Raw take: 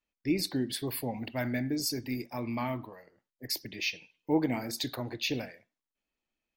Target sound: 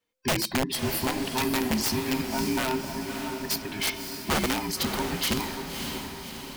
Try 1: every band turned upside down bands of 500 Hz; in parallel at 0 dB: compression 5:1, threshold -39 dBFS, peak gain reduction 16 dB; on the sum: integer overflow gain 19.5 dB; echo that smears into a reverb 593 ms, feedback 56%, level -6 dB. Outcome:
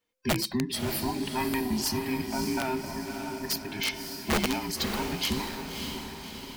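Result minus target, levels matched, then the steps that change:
compression: peak gain reduction +7.5 dB
change: compression 5:1, threshold -29.5 dBFS, peak gain reduction 8.5 dB

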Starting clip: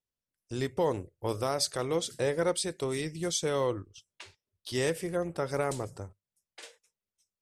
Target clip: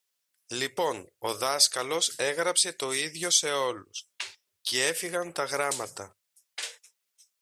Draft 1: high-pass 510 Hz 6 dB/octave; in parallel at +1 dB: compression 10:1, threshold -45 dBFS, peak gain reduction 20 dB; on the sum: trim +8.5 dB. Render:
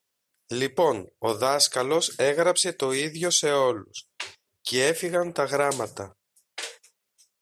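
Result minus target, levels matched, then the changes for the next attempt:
500 Hz band +4.5 dB
change: high-pass 1.9 kHz 6 dB/octave

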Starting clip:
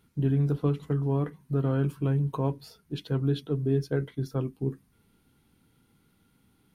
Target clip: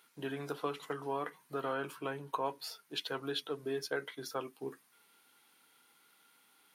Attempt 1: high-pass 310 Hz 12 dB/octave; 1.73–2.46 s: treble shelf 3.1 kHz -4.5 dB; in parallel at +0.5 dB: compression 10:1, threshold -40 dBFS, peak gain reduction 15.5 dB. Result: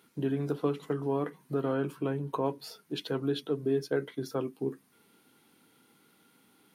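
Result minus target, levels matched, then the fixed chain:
1 kHz band -6.5 dB
high-pass 810 Hz 12 dB/octave; 1.73–2.46 s: treble shelf 3.1 kHz -4.5 dB; in parallel at +0.5 dB: compression 10:1, threshold -40 dBFS, peak gain reduction 8 dB

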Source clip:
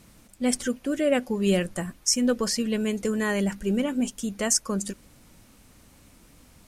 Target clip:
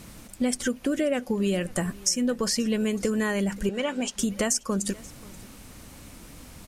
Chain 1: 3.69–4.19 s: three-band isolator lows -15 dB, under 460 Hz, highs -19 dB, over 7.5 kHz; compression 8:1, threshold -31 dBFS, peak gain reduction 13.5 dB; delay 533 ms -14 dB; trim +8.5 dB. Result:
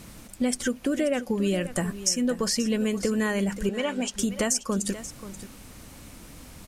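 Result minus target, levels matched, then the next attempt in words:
echo-to-direct +8.5 dB
3.69–4.19 s: three-band isolator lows -15 dB, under 460 Hz, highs -19 dB, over 7.5 kHz; compression 8:1, threshold -31 dBFS, peak gain reduction 13.5 dB; delay 533 ms -22.5 dB; trim +8.5 dB

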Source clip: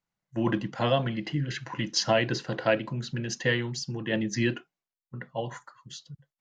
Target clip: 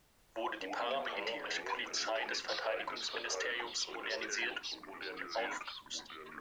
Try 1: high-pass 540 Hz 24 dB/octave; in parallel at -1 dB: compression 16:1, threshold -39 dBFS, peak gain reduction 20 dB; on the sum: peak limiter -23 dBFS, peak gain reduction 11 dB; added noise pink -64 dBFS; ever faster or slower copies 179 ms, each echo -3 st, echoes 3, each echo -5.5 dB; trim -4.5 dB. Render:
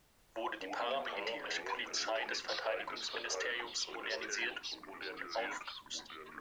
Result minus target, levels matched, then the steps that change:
compression: peak gain reduction +11 dB
change: compression 16:1, threshold -27 dBFS, peak gain reduction 8.5 dB

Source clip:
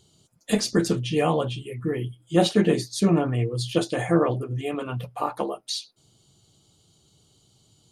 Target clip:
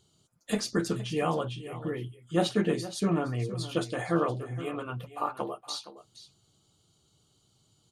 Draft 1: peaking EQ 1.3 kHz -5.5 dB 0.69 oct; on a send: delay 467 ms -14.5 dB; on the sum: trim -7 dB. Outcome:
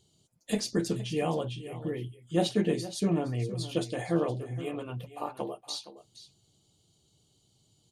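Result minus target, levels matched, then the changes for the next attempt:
1 kHz band -3.5 dB
change: peaking EQ 1.3 kHz +6 dB 0.69 oct

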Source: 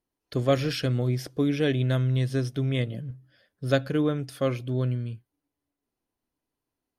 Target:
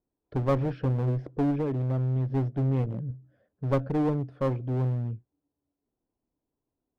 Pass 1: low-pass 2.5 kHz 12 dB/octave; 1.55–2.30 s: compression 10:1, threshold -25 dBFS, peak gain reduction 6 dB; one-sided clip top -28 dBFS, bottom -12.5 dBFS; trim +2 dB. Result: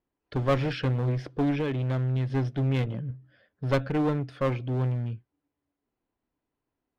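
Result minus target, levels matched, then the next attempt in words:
2 kHz band +8.5 dB
low-pass 760 Hz 12 dB/octave; 1.55–2.30 s: compression 10:1, threshold -25 dBFS, peak gain reduction 6 dB; one-sided clip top -28 dBFS, bottom -12.5 dBFS; trim +2 dB

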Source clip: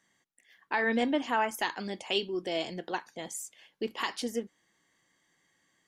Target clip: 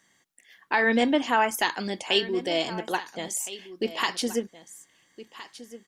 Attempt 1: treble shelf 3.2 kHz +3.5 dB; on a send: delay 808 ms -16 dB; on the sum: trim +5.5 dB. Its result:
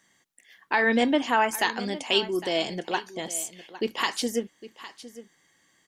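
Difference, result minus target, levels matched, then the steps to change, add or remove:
echo 557 ms early
change: delay 1365 ms -16 dB

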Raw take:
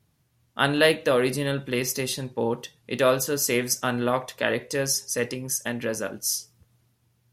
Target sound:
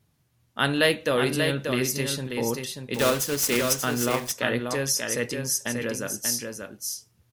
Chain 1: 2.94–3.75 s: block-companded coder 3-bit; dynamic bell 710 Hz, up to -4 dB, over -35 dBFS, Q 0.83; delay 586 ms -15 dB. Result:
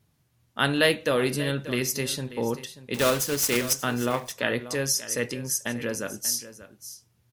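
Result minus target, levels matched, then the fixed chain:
echo-to-direct -9.5 dB
2.94–3.75 s: block-companded coder 3-bit; dynamic bell 710 Hz, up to -4 dB, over -35 dBFS, Q 0.83; delay 586 ms -5.5 dB

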